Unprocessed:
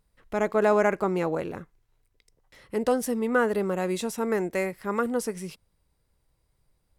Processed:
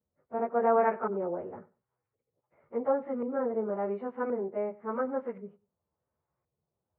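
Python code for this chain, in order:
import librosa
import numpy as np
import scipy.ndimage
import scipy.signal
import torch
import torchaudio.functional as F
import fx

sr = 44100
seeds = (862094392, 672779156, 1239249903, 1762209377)

y = fx.pitch_bins(x, sr, semitones=1.5)
y = fx.filter_lfo_lowpass(y, sr, shape='saw_up', hz=0.93, low_hz=490.0, high_hz=1600.0, q=0.77)
y = fx.cabinet(y, sr, low_hz=100.0, low_slope=24, high_hz=2500.0, hz=(120.0, 180.0, 290.0, 860.0, 1300.0, 2000.0), db=(-7, -7, -6, 3, 4, 3))
y = fx.echo_feedback(y, sr, ms=95, feedback_pct=18, wet_db=-21)
y = y * 10.0 ** (-2.0 / 20.0)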